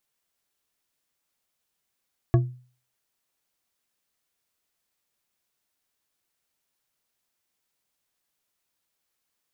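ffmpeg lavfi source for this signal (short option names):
-f lavfi -i "aevalsrc='0.237*pow(10,-3*t/0.42)*sin(2*PI*125*t)+0.119*pow(10,-3*t/0.207)*sin(2*PI*344.6*t)+0.0596*pow(10,-3*t/0.129)*sin(2*PI*675.5*t)+0.0299*pow(10,-3*t/0.091)*sin(2*PI*1116.6*t)+0.015*pow(10,-3*t/0.068)*sin(2*PI*1667.5*t)':d=0.89:s=44100"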